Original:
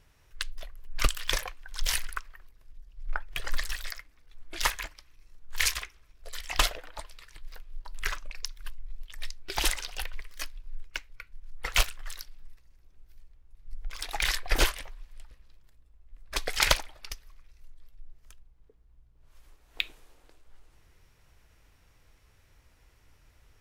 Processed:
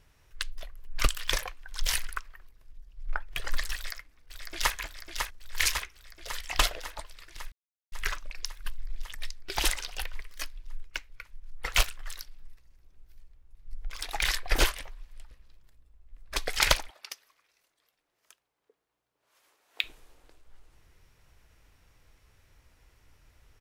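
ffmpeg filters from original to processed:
-filter_complex "[0:a]asplit=2[a][b];[b]afade=t=in:st=3.75:d=0.01,afade=t=out:st=4.75:d=0.01,aecho=0:1:550|1100|1650|2200|2750|3300|3850|4400|4950|5500|6050|6600:0.530884|0.371619|0.260133|0.182093|0.127465|0.0892257|0.062458|0.0437206|0.0306044|0.0214231|0.0149962|0.0104973[c];[a][c]amix=inputs=2:normalize=0,asettb=1/sr,asplit=3[d][e][f];[d]atrim=end=16.904[g];[e]atrim=start=16.9:end=19.84,asetpts=PTS-STARTPTS,afade=t=in:d=0.004:c=qsin,afade=t=out:st=2.936:d=0.004:c=qsin,highpass=450[h];[f]atrim=start=19.836[i];[g][h]acrossfade=d=0.004:c1=hsin:c2=qsin[j];[j][i]acrossfade=d=0.004:c1=qsin:c2=hsin,asplit=5[k][l][m][n][o];[k]atrim=end=7.52,asetpts=PTS-STARTPTS,afade=t=out:st=7.516:d=0.004:c=hsin[p];[l]atrim=start=7.52:end=7.92,asetpts=PTS-STARTPTS,volume=0[q];[m]atrim=start=7.92:end=8.662,asetpts=PTS-STARTPTS,afade=t=in:d=0.004:c=hsin[r];[n]atrim=start=8.658:end=9.152,asetpts=PTS-STARTPTS,volume=4dB[s];[o]atrim=start=9.148[t];[p][q][r]concat=n=3:v=0:a=1[u];[u][s]acrossfade=d=0.004:c1=hsin:c2=hsin[v];[v][t]acrossfade=d=0.004:c1=hsin:c2=hsin"

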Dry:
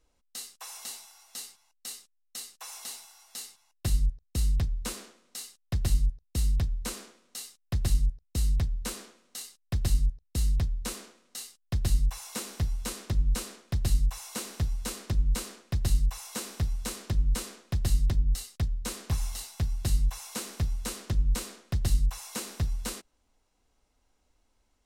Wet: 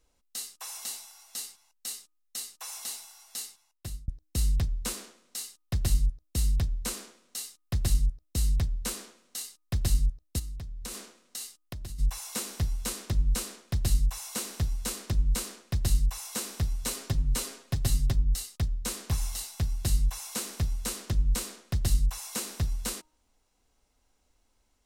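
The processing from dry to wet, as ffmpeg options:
-filter_complex "[0:a]asplit=3[a][b][c];[a]afade=t=out:st=10.38:d=0.02[d];[b]acompressor=threshold=-35dB:ratio=12:attack=3.2:release=140:knee=1:detection=peak,afade=t=in:st=10.38:d=0.02,afade=t=out:st=11.98:d=0.02[e];[c]afade=t=in:st=11.98:d=0.02[f];[d][e][f]amix=inputs=3:normalize=0,asettb=1/sr,asplit=3[g][h][i];[g]atrim=end=16.834[j];[h]atrim=start=16.83:end=18.13,asetpts=PTS-STARTPTS,afade=t=in:d=0.004:c=qsin,afade=t=out:st=1.296:d=0.004:c=qsin,aecho=1:1:7.4:0.56,atrim=end_sample=57330[k];[i]atrim=start=18.126[l];[j][k]acrossfade=d=0.004:c1=hsin:c2=qsin[m];[m][l]acrossfade=d=0.004:c1=qsin:c2=hsin,asplit=2[n][o];[n]atrim=end=4.08,asetpts=PTS-STARTPTS,afade=t=out:st=3.42:d=0.66[p];[o]atrim=start=4.08,asetpts=PTS-STARTPTS,afade=t=in:d=0.004:c=hsin[q];[p][q]concat=n=2:v=0:a=1,highshelf=f=4.9k:g=4.5,bandreject=f=309.9:t=h:w=4,bandreject=f=619.8:t=h:w=4,bandreject=f=929.7:t=h:w=4,bandreject=f=1.2396k:t=h:w=4"

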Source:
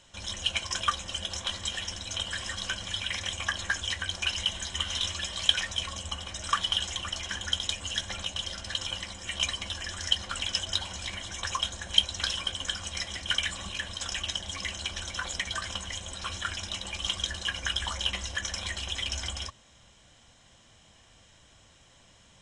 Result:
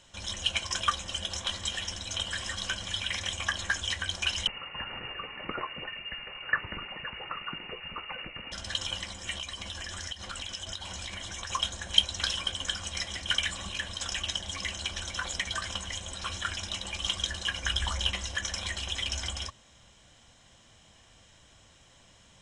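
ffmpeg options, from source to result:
-filter_complex "[0:a]asettb=1/sr,asplit=3[a][b][c];[a]atrim=end=4.474[d];[b]atrim=start=4.47:end=8.52,asetpts=PTS-STARTPTS,afade=t=in:d=0.004:c=qsin,afade=t=out:st=4.046:d=0.004:c=qsin,lowpass=f=2.5k:t=q:w=0.5098,lowpass=f=2.5k:t=q:w=0.6013,lowpass=f=2.5k:t=q:w=0.9,lowpass=f=2.5k:t=q:w=2.563,afreqshift=-2900[e];[c]atrim=start=8.516[f];[d][e]acrossfade=d=0.004:c1=hsin:c2=qsin[g];[g][f]acrossfade=d=0.004:c1=qsin:c2=hsin,asettb=1/sr,asplit=3[h][i][j];[h]atrim=end=9.354[k];[i]atrim=start=9.35:end=11.5,asetpts=PTS-STARTPTS,afade=t=in:d=0.004:c=qsin,afade=t=out:st=2.146:d=0.004:c=qsin,acompressor=threshold=-34dB:ratio=6:attack=3.2:release=140:knee=1:detection=peak[l];[j]atrim=start=11.496[m];[k][l]acrossfade=d=0.004:c1=hsin:c2=qsin[n];[n][m]acrossfade=d=0.004:c1=qsin:c2=hsin,asettb=1/sr,asplit=3[o][p][q];[o]atrim=end=17.664[r];[p]atrim=start=17.66:end=18.11,asetpts=PTS-STARTPTS,afade=t=in:d=0.004:c=qsin,afade=t=out:st=0.446:d=0.004:c=qsin,lowshelf=f=120:g=7.5[s];[q]atrim=start=18.106[t];[r][s]acrossfade=d=0.004:c1=hsin:c2=qsin[u];[u][t]acrossfade=d=0.004:c1=qsin:c2=hsin"

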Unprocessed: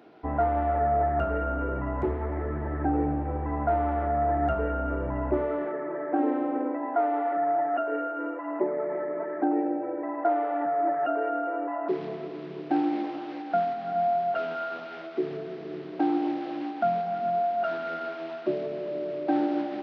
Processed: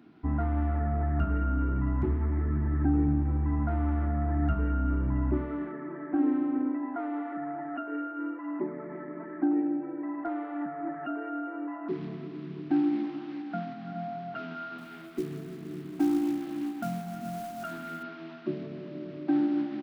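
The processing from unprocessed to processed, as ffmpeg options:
-filter_complex "[0:a]asettb=1/sr,asplit=3[a][b][c];[a]atrim=end=14.784[d];[b]atrim=start=14.78:end=18.03,asetpts=PTS-STARTPTS,afade=t=in:d=0.004:c=qsin,afade=t=out:st=3.246:d=0.004:c=qsin,acrusher=bits=5:mode=log:mix=0:aa=0.000001[e];[c]atrim=start=18.026[f];[d][e]acrossfade=d=0.004:c1=hsin:c2=qsin[g];[g][f]acrossfade=d=0.004:c1=qsin:c2=hsin,firequalizer=gain_entry='entry(250,0);entry(500,-22);entry(1100,-10)':delay=0.05:min_phase=1,volume=5dB"

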